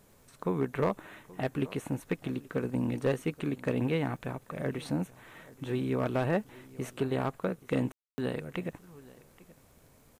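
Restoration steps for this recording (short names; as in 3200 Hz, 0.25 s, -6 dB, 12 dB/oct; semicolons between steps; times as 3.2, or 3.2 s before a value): clip repair -20 dBFS; de-click; room tone fill 7.92–8.18; inverse comb 0.828 s -21 dB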